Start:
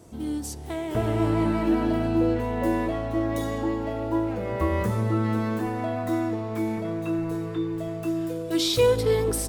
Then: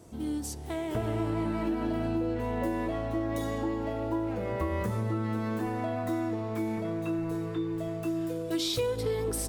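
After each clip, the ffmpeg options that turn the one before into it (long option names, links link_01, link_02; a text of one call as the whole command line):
ffmpeg -i in.wav -af "acompressor=threshold=-24dB:ratio=6,volume=-2.5dB" out.wav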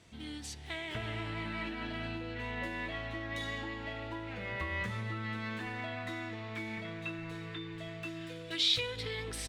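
ffmpeg -i in.wav -af "firequalizer=gain_entry='entry(180,0);entry(320,-6);entry(1200,3);entry(1900,14);entry(3700,14);entry(5200,5);entry(14000,-11)':delay=0.05:min_phase=1,volume=-7.5dB" out.wav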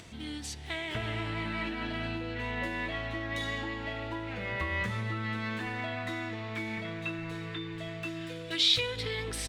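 ffmpeg -i in.wav -af "acompressor=mode=upward:threshold=-48dB:ratio=2.5,volume=4dB" out.wav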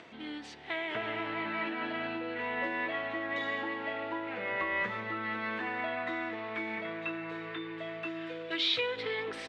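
ffmpeg -i in.wav -af "highpass=330,lowpass=2400,volume=3dB" out.wav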